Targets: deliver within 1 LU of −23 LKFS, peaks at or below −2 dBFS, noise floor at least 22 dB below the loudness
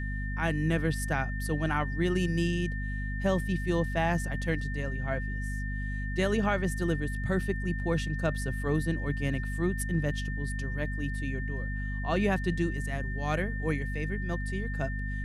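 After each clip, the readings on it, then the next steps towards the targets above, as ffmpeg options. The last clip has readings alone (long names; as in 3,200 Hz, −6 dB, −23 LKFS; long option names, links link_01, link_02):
mains hum 50 Hz; hum harmonics up to 250 Hz; level of the hum −31 dBFS; interfering tone 1,800 Hz; level of the tone −39 dBFS; integrated loudness −31.0 LKFS; sample peak −14.0 dBFS; target loudness −23.0 LKFS
→ -af "bandreject=frequency=50:width_type=h:width=6,bandreject=frequency=100:width_type=h:width=6,bandreject=frequency=150:width_type=h:width=6,bandreject=frequency=200:width_type=h:width=6,bandreject=frequency=250:width_type=h:width=6"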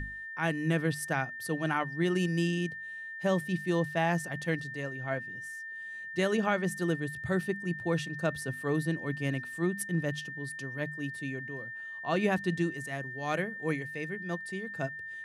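mains hum none found; interfering tone 1,800 Hz; level of the tone −39 dBFS
→ -af "bandreject=frequency=1800:width=30"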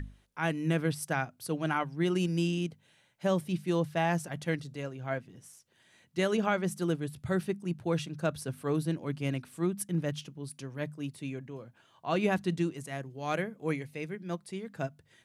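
interfering tone none found; integrated loudness −33.0 LKFS; sample peak −15.0 dBFS; target loudness −23.0 LKFS
→ -af "volume=10dB"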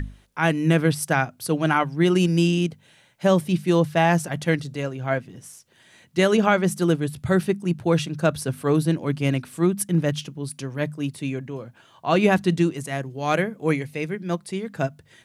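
integrated loudness −23.0 LKFS; sample peak −5.0 dBFS; background noise floor −57 dBFS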